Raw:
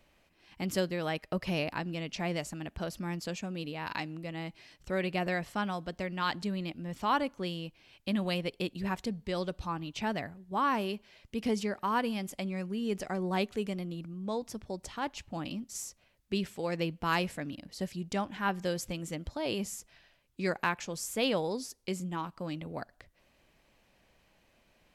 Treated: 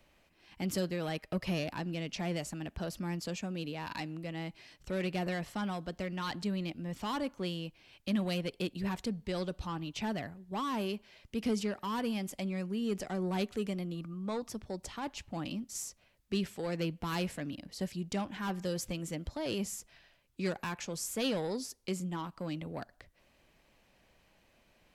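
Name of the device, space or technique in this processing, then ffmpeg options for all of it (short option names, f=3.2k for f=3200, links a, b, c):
one-band saturation: -filter_complex "[0:a]acrossover=split=350|3700[a][b][c];[b]asoftclip=type=tanh:threshold=-34.5dB[d];[a][d][c]amix=inputs=3:normalize=0,asettb=1/sr,asplit=3[e][f][g];[e]atrim=end=13.954[h];[f]atrim=start=13.95:end=14.49,asetpts=PTS-STARTPTS,afade=t=in:d=0.004:c=qsin,afade=t=out:st=0.536:d=0.004:c=qsin,equalizer=f=1.2k:w=6.5:g=13.5[i];[g]atrim=start=14.486[j];[h][i]acrossfade=d=0.004:c1=hsin:c2=qsin[k];[k][j]acrossfade=d=0.004:c1=qsin:c2=hsin"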